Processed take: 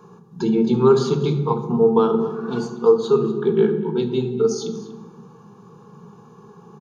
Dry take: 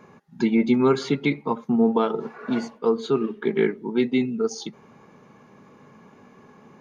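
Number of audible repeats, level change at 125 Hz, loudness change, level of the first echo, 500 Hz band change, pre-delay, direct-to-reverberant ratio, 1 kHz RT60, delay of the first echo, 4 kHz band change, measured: 1, +9.0 dB, +4.0 dB, -17.5 dB, +6.5 dB, 3 ms, 6.5 dB, 1.1 s, 0.24 s, +1.0 dB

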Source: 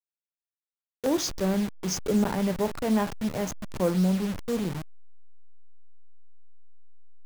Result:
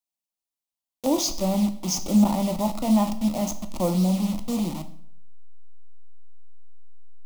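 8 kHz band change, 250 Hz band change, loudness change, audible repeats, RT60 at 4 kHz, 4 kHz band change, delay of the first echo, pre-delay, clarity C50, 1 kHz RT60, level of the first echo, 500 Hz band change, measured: +5.0 dB, +4.5 dB, +3.5 dB, none, 0.50 s, +4.0 dB, none, 12 ms, 13.5 dB, 0.60 s, none, -0.5 dB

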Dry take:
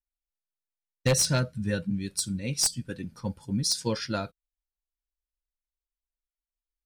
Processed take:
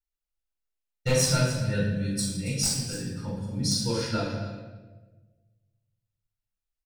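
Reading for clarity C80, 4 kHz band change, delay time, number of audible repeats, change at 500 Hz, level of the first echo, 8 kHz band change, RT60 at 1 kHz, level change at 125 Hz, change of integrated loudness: 3.5 dB, +0.5 dB, 0.278 s, 1, +2.0 dB, -12.5 dB, -0.5 dB, 1.1 s, +3.0 dB, +0.5 dB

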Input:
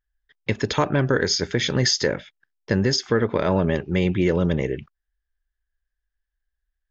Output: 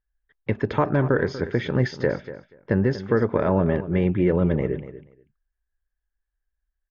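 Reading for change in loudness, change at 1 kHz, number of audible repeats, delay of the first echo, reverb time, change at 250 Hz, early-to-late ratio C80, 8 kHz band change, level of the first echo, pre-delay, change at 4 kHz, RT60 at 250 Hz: -1.0 dB, -0.5 dB, 2, 0.24 s, none, 0.0 dB, none, n/a, -14.0 dB, none, -17.5 dB, none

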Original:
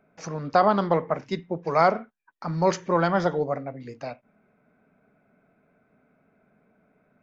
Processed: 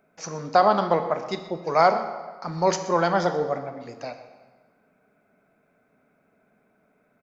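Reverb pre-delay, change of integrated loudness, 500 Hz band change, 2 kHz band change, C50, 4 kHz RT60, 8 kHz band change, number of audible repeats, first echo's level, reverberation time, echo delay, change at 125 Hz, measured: 25 ms, +1.0 dB, +1.0 dB, +1.0 dB, 10.0 dB, 1.1 s, n/a, 1, -16.5 dB, 1.5 s, 0.125 s, -3.5 dB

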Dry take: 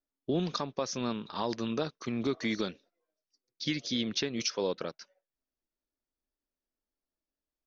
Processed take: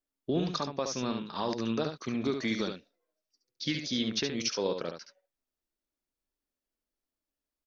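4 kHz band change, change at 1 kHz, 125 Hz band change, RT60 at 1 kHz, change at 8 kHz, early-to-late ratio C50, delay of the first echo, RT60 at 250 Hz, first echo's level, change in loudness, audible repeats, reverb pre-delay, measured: +1.0 dB, +1.0 dB, +1.0 dB, none, n/a, none, 71 ms, none, -6.5 dB, +1.0 dB, 1, none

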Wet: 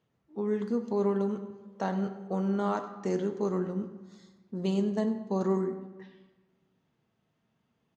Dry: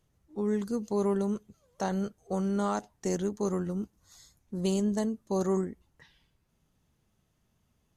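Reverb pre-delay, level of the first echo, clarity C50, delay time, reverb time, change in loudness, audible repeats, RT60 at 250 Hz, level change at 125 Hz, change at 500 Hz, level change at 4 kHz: 4 ms, -16.0 dB, 10.0 dB, 98 ms, 1.3 s, +0.5 dB, 1, 1.5 s, 0.0 dB, +0.5 dB, -3.0 dB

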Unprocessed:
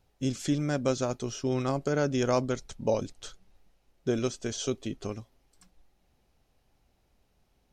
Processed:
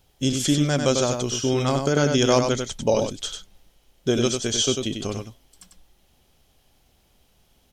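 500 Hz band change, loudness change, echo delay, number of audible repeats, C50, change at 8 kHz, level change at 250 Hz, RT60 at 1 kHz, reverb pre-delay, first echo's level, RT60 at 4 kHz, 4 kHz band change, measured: +7.0 dB, +8.0 dB, 96 ms, 1, none, +13.0 dB, +7.0 dB, none, none, -5.5 dB, none, +15.0 dB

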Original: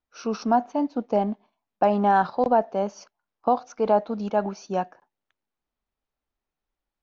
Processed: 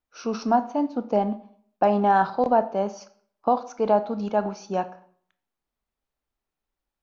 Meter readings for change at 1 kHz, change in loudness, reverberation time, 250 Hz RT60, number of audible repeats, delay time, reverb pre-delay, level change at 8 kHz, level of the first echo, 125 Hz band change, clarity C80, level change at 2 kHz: +0.5 dB, +0.5 dB, 0.60 s, 0.60 s, none, none, 19 ms, n/a, none, 0.0 dB, 19.0 dB, +0.5 dB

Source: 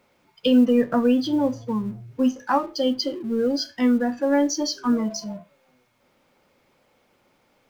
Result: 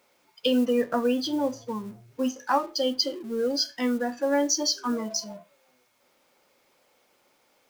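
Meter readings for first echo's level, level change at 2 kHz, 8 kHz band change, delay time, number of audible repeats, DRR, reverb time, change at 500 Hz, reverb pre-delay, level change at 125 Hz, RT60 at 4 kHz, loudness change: none, -1.5 dB, n/a, none, none, none, none, -3.0 dB, none, n/a, none, -4.0 dB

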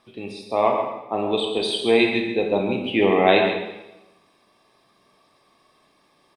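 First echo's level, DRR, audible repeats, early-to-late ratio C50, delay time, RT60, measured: -8.5 dB, 1.0 dB, 1, 3.5 dB, 0.135 s, 1.0 s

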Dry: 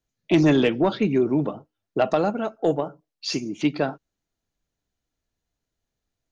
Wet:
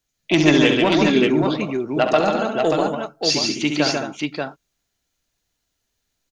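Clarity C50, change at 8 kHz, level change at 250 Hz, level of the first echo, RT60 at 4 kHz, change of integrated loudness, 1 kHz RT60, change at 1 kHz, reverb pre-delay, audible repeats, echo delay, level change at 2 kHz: none, n/a, +4.0 dB, -7.5 dB, none, +4.5 dB, none, +6.0 dB, none, 4, 67 ms, +10.0 dB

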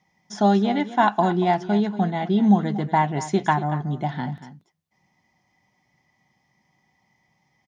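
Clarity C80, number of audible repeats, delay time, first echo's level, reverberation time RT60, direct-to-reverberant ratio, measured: none, 1, 0.234 s, -14.0 dB, none, none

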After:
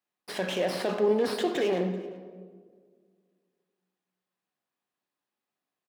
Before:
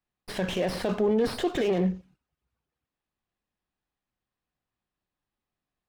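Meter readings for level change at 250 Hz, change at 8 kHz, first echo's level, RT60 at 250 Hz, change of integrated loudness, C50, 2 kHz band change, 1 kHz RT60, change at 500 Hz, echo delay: -3.5 dB, +0.5 dB, -23.0 dB, 2.2 s, -1.0 dB, 9.5 dB, +0.5 dB, 1.5 s, +0.5 dB, 0.386 s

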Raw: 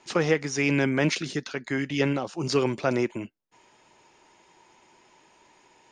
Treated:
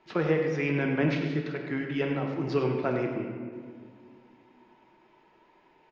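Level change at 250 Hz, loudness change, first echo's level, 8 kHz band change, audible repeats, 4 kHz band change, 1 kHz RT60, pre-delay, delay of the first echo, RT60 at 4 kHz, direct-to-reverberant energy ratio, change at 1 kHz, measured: -2.0 dB, -3.0 dB, -11.0 dB, under -20 dB, 1, -10.0 dB, 1.8 s, 3 ms, 99 ms, 1.2 s, 1.0 dB, -3.0 dB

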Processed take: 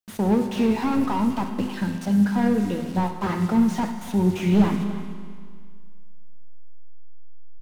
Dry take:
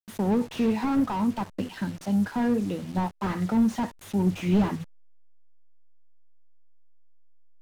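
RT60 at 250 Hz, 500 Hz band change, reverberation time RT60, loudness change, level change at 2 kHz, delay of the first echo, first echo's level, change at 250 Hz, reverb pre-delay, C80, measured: 1.9 s, +4.0 dB, 2.0 s, +4.0 dB, +4.0 dB, 0.294 s, -15.5 dB, +4.0 dB, 6 ms, 7.5 dB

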